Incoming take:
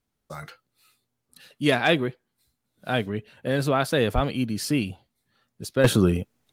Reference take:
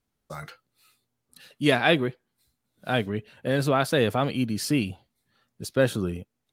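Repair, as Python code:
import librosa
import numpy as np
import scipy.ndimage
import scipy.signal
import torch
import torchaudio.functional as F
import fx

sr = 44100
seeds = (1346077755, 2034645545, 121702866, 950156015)

y = fx.fix_declip(x, sr, threshold_db=-9.0)
y = fx.highpass(y, sr, hz=140.0, slope=24, at=(4.14, 4.26), fade=0.02)
y = fx.gain(y, sr, db=fx.steps((0.0, 0.0), (5.84, -9.0)))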